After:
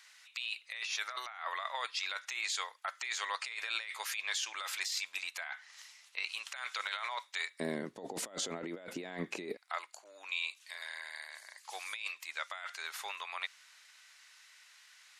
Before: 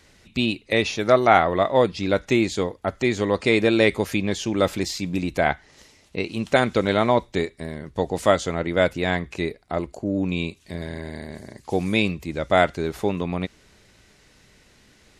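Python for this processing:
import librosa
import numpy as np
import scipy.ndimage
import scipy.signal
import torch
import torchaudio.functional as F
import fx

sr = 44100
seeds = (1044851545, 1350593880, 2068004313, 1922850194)

y = fx.highpass(x, sr, hz=fx.steps((0.0, 1100.0), (7.6, 210.0), (9.57, 1100.0)), slope=24)
y = fx.over_compress(y, sr, threshold_db=-33.0, ratio=-1.0)
y = y * librosa.db_to_amplitude(-6.5)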